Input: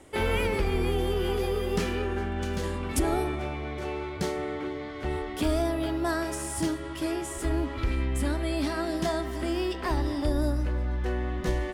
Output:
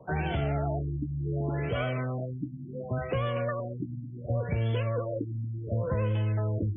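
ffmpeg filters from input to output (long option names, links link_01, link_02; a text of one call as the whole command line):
ffmpeg -i in.wav -filter_complex "[0:a]highpass=55,equalizer=frequency=540:width_type=o:width=1.7:gain=-11,areverse,acompressor=mode=upward:threshold=-31dB:ratio=2.5,areverse,asetrate=76440,aresample=44100,acrossover=split=220|1400[link_01][link_02][link_03];[link_01]volume=28dB,asoftclip=hard,volume=-28dB[link_04];[link_04][link_02][link_03]amix=inputs=3:normalize=0,acompressor=threshold=-29dB:ratio=6,afftfilt=real='re*lt(b*sr/1024,300*pow(3500/300,0.5+0.5*sin(2*PI*0.69*pts/sr)))':imag='im*lt(b*sr/1024,300*pow(3500/300,0.5+0.5*sin(2*PI*0.69*pts/sr)))':win_size=1024:overlap=0.75,volume=5dB" out.wav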